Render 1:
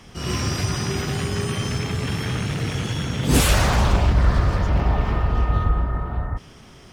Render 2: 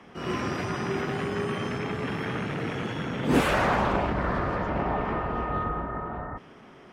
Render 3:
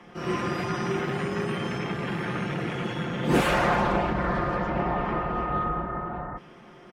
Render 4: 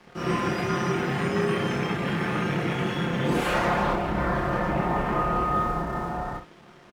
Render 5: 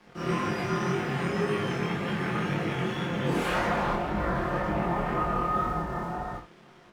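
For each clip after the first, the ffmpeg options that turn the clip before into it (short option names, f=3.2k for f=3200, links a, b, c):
-filter_complex "[0:a]acrossover=split=180 2500:gain=0.126 1 0.126[a][b][c];[a][b][c]amix=inputs=3:normalize=0"
-af "aecho=1:1:5.7:0.49"
-filter_complex "[0:a]alimiter=limit=-18dB:level=0:latency=1:release=362,aeval=exprs='sgn(val(0))*max(abs(val(0))-0.00266,0)':c=same,asplit=2[a][b];[b]aecho=0:1:29|66:0.562|0.299[c];[a][c]amix=inputs=2:normalize=0,volume=2.5dB"
-af "flanger=delay=19:depth=5.2:speed=1.9"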